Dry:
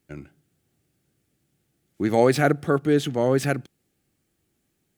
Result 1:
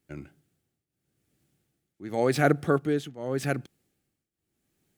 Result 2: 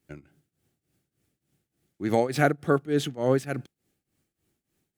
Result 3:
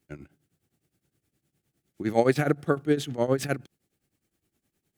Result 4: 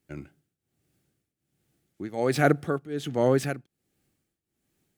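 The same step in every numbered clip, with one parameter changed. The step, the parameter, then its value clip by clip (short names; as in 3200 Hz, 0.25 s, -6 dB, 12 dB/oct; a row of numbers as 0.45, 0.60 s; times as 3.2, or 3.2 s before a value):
tremolo, rate: 0.87, 3.4, 9.7, 1.3 Hz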